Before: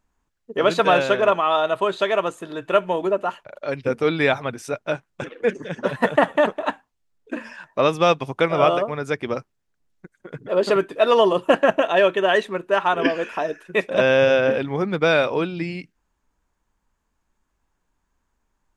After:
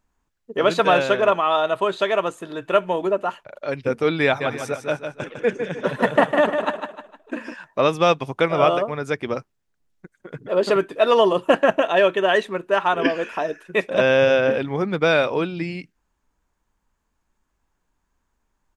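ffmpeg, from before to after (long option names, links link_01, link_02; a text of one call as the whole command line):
ffmpeg -i in.wav -filter_complex "[0:a]asplit=3[link_01][link_02][link_03];[link_01]afade=type=out:start_time=4.4:duration=0.02[link_04];[link_02]aecho=1:1:153|306|459|612:0.447|0.17|0.0645|0.0245,afade=type=in:start_time=4.4:duration=0.02,afade=type=out:start_time=7.53:duration=0.02[link_05];[link_03]afade=type=in:start_time=7.53:duration=0.02[link_06];[link_04][link_05][link_06]amix=inputs=3:normalize=0" out.wav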